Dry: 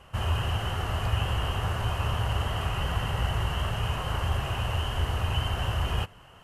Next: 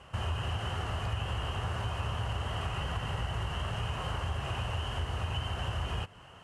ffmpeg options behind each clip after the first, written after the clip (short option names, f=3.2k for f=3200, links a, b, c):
-af "lowpass=f=9.9k:w=0.5412,lowpass=f=9.9k:w=1.3066,acompressor=threshold=-31dB:ratio=3,highpass=48"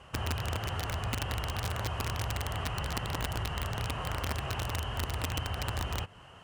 -filter_complex "[0:a]acrossover=split=3400[a][b];[b]alimiter=level_in=25.5dB:limit=-24dB:level=0:latency=1:release=63,volume=-25.5dB[c];[a][c]amix=inputs=2:normalize=0,aeval=exprs='(mod(18.8*val(0)+1,2)-1)/18.8':c=same"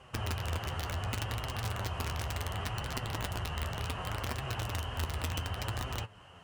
-af "flanger=delay=7.5:depth=6:regen=52:speed=0.68:shape=triangular,volume=2dB"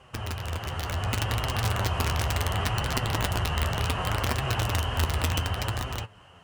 -af "dynaudnorm=f=280:g=7:m=7.5dB,volume=1.5dB"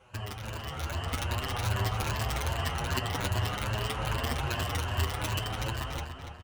-filter_complex "[0:a]afftfilt=real='re*pow(10,7/40*sin(2*PI*(1.4*log(max(b,1)*sr/1024/100)/log(2)-(2.5)*(pts-256)/sr)))':imag='im*pow(10,7/40*sin(2*PI*(1.4*log(max(b,1)*sr/1024/100)/log(2)-(2.5)*(pts-256)/sr)))':win_size=1024:overlap=0.75,asplit=2[a][b];[b]adelay=287,lowpass=f=4.7k:p=1,volume=-6.5dB,asplit=2[c][d];[d]adelay=287,lowpass=f=4.7k:p=1,volume=0.41,asplit=2[e][f];[f]adelay=287,lowpass=f=4.7k:p=1,volume=0.41,asplit=2[g][h];[h]adelay=287,lowpass=f=4.7k:p=1,volume=0.41,asplit=2[i][j];[j]adelay=287,lowpass=f=4.7k:p=1,volume=0.41[k];[c][e][g][i][k]amix=inputs=5:normalize=0[l];[a][l]amix=inputs=2:normalize=0,asplit=2[m][n];[n]adelay=7.8,afreqshift=0.6[o];[m][o]amix=inputs=2:normalize=1,volume=-2dB"